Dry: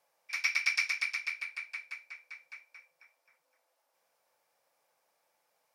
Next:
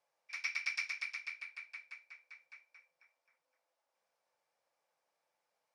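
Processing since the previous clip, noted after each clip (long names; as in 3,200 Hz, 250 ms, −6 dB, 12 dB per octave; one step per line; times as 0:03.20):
Bessel low-pass filter 7,200 Hz, order 2
level −7.5 dB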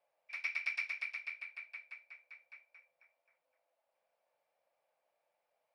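graphic EQ with 15 bands 630 Hz +11 dB, 2,500 Hz +5 dB, 6,300 Hz −10 dB
level −3.5 dB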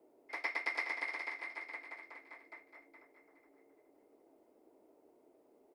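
octave-band graphic EQ 500/1,000/2,000/4,000 Hz +9/+11/−8/−5 dB
frequency shifter −230 Hz
repeating echo 418 ms, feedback 30%, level −8 dB
level +6 dB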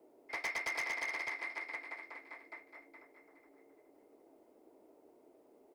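hard clipping −36 dBFS, distortion −9 dB
level +3 dB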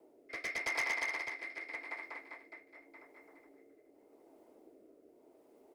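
rotating-speaker cabinet horn 0.85 Hz
level +3.5 dB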